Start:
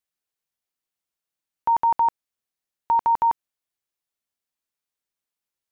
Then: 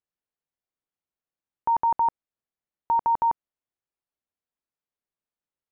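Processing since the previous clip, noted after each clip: low-pass 1 kHz 6 dB/octave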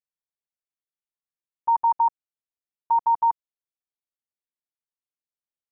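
level held to a coarse grid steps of 22 dB; trim +4 dB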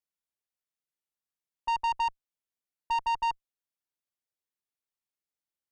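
valve stage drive 25 dB, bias 0.25

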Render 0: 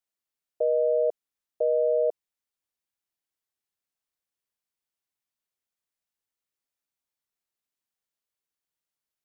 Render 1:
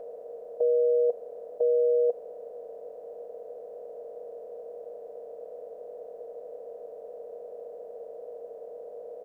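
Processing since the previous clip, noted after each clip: spectral levelling over time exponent 0.2; band-stop 510 Hz, Q 12; comb 4 ms, depth 71%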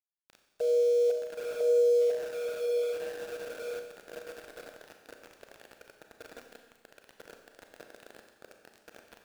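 echo that smears into a reverb 956 ms, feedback 43%, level -5.5 dB; small samples zeroed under -33.5 dBFS; Schroeder reverb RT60 1.3 s, combs from 29 ms, DRR 4 dB; trim -6 dB

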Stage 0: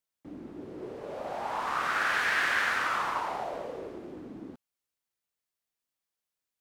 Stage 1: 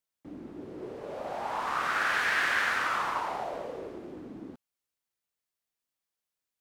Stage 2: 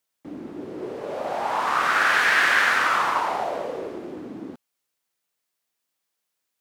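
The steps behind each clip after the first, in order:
no audible change
high-pass 170 Hz 6 dB/octave; trim +8.5 dB

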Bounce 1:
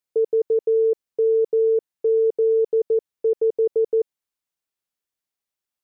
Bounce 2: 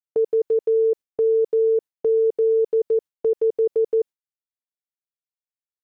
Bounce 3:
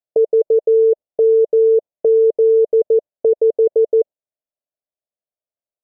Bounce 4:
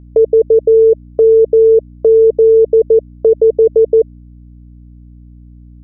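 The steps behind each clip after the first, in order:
gate with hold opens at -20 dBFS
resonant low-pass 620 Hz, resonance Q 5.5
hum 60 Hz, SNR 25 dB; dynamic bell 260 Hz, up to +3 dB, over -30 dBFS, Q 1; trim +3.5 dB

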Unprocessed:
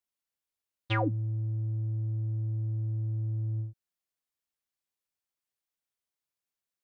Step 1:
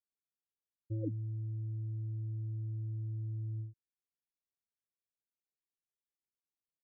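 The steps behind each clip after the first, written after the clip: steep low-pass 510 Hz 72 dB/octave; trim -7 dB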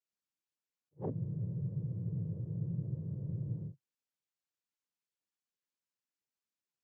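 noise-vocoded speech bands 8; attacks held to a fixed rise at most 460 dB/s; trim +1 dB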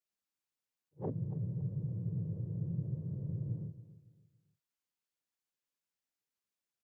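feedback delay 280 ms, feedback 32%, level -15 dB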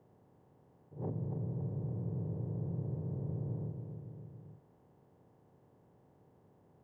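spectral levelling over time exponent 0.4; trim -4 dB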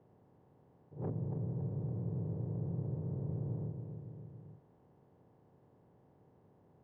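tracing distortion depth 0.1 ms; distance through air 140 m

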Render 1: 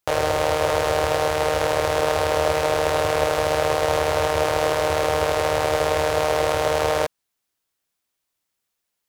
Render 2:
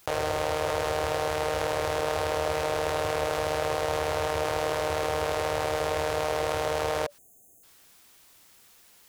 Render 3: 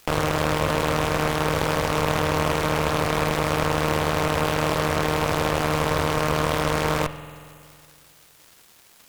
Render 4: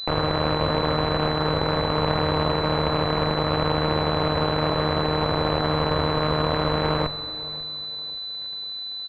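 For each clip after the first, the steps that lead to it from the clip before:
band-stop 580 Hz, Q 19; spectral selection erased 7.18–7.63 s, 790–6200 Hz; level flattener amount 50%; trim -8 dB
Chebyshev shaper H 8 -9 dB, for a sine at -11 dBFS; spring tank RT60 2.3 s, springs 46 ms, chirp 45 ms, DRR 12 dB; crackle 300 per s -40 dBFS; trim +1.5 dB
feedback delay 541 ms, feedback 38%, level -19 dB; class-D stage that switches slowly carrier 4 kHz

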